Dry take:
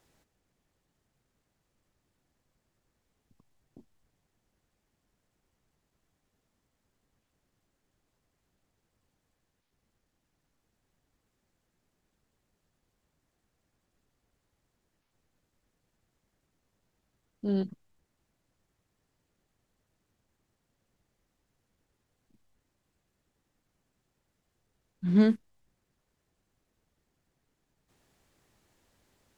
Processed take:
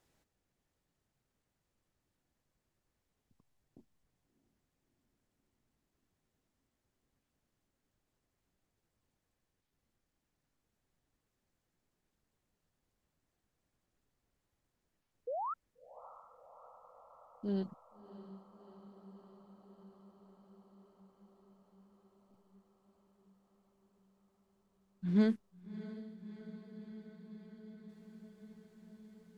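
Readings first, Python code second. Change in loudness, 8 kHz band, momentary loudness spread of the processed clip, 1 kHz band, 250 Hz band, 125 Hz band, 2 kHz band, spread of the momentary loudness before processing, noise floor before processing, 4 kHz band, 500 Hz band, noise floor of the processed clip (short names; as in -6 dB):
-11.0 dB, n/a, 24 LU, +8.0 dB, -6.0 dB, -6.0 dB, -6.0 dB, 14 LU, -80 dBFS, -6.0 dB, -5.0 dB, -85 dBFS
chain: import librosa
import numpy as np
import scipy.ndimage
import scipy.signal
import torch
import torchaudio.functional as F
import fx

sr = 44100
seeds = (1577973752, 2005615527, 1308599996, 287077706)

y = fx.spec_paint(x, sr, seeds[0], shape='rise', start_s=15.27, length_s=0.27, low_hz=460.0, high_hz=1400.0, level_db=-31.0)
y = fx.echo_diffused(y, sr, ms=651, feedback_pct=77, wet_db=-15.0)
y = y * librosa.db_to_amplitude(-6.5)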